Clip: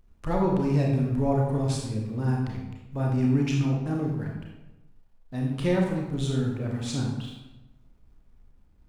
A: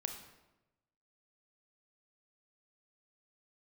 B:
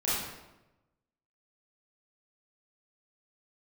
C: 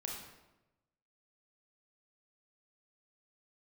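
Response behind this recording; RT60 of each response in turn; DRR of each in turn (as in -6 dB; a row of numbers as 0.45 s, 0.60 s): C; 1.0 s, 1.0 s, 1.0 s; 5.0 dB, -10.0 dB, -1.5 dB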